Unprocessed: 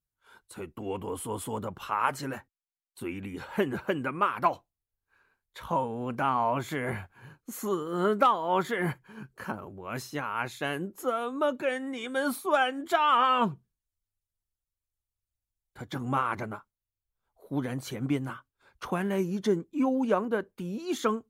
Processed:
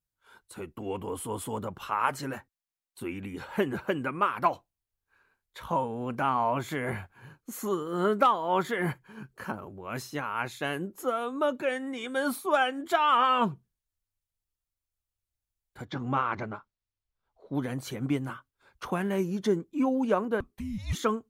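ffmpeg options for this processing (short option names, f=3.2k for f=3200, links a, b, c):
-filter_complex "[0:a]asettb=1/sr,asplit=3[a][b][c];[a]atrim=end=15.854[d];[b]atrim=start=15.85:end=17.55,asetpts=PTS-STARTPTS,afade=t=in:d=0.004:c=qsin,afade=t=out:st=1.696:d=0.004:c=qsin,lowpass=f=5.6k:w=0.5412,lowpass=f=5.6k:w=1.3066[e];[c]atrim=start=17.546[f];[d][e]acrossfade=d=0.004:c1=hsin:c2=qsin[g];[g][f]acrossfade=d=0.004:c1=qsin:c2=hsin,asettb=1/sr,asplit=3[h][i][j];[h]atrim=end=20.404[k];[i]atrim=start=20.4:end=20.95,asetpts=PTS-STARTPTS,afade=t=in:d=0.004:c=qsin,afade=t=out:st=0.546:d=0.004:c=qsin,afreqshift=-430[l];[j]atrim=start=20.946[m];[k][l]acrossfade=d=0.004:c1=hsin:c2=qsin[n];[n][m]acrossfade=d=0.004:c1=qsin:c2=hsin"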